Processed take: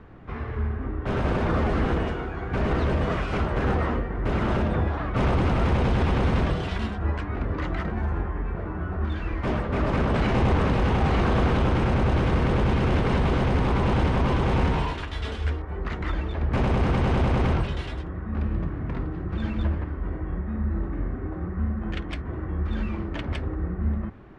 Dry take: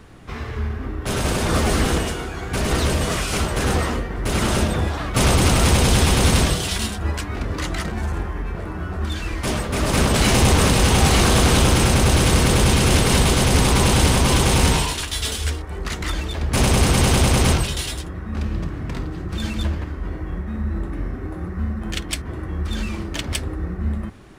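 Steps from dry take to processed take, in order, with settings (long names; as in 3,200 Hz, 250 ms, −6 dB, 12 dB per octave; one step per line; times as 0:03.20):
low-pass filter 1,800 Hz 12 dB per octave
brickwall limiter −13 dBFS, peak gain reduction 5 dB
level −2 dB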